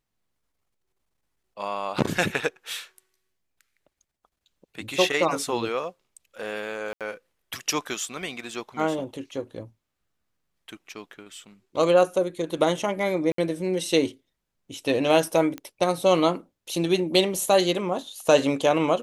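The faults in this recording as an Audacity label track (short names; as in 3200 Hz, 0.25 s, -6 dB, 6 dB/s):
6.930000	7.010000	gap 77 ms
13.320000	13.380000	gap 63 ms
15.580000	15.580000	pop -20 dBFS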